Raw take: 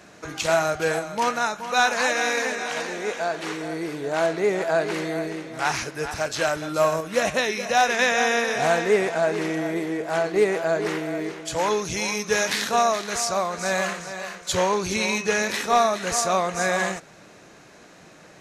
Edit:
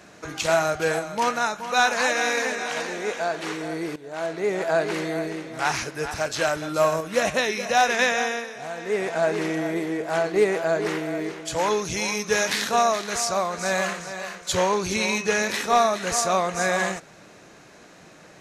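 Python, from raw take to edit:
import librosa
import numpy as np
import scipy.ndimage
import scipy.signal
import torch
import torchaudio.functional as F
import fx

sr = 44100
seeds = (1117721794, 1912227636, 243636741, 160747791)

y = fx.edit(x, sr, fx.fade_in_from(start_s=3.96, length_s=0.75, floor_db=-15.5),
    fx.fade_down_up(start_s=8.02, length_s=1.22, db=-13.0, fade_s=0.49), tone=tone)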